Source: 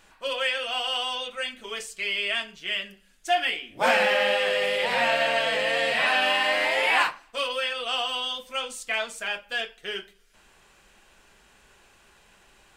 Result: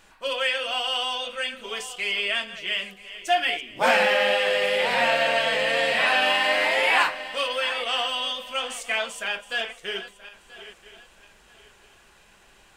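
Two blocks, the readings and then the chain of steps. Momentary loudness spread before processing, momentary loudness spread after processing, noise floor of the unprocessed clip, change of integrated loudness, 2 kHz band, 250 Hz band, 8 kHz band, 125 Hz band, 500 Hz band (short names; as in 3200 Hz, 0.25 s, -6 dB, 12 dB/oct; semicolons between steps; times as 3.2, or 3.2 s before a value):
11 LU, 11 LU, -59 dBFS, +1.5 dB, +1.5 dB, +1.5 dB, +1.5 dB, +2.0 dB, +2.0 dB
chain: regenerating reverse delay 0.49 s, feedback 52%, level -14 dB; gain +1.5 dB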